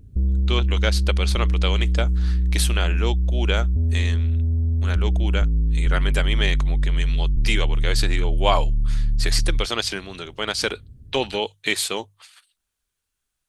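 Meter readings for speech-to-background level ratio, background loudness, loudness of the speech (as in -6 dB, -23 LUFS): -3.5 dB, -23.0 LUFS, -26.5 LUFS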